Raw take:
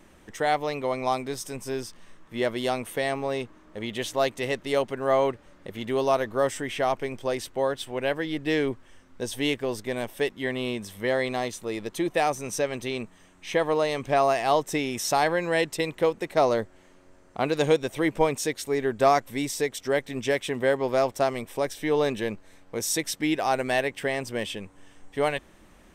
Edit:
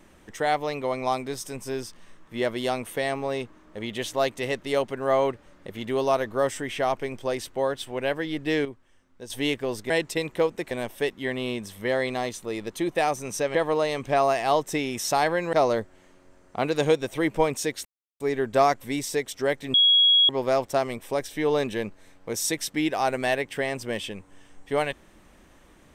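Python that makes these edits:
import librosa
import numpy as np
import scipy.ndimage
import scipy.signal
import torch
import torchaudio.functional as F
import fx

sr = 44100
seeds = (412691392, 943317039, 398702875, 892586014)

y = fx.edit(x, sr, fx.clip_gain(start_s=8.65, length_s=0.65, db=-9.5),
    fx.cut(start_s=12.74, length_s=0.81),
    fx.move(start_s=15.53, length_s=0.81, to_s=9.9),
    fx.insert_silence(at_s=18.66, length_s=0.35),
    fx.bleep(start_s=20.2, length_s=0.55, hz=3320.0, db=-14.5), tone=tone)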